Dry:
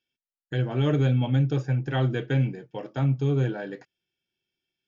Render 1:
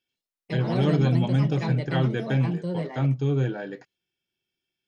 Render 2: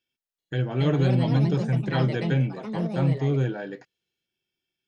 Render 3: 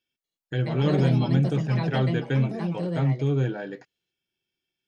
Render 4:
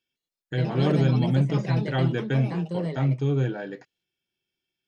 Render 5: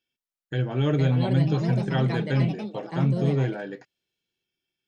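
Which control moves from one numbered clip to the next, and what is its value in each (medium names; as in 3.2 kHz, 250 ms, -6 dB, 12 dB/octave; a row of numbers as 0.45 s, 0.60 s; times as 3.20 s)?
ever faster or slower copies, time: 84 ms, 385 ms, 242 ms, 157 ms, 569 ms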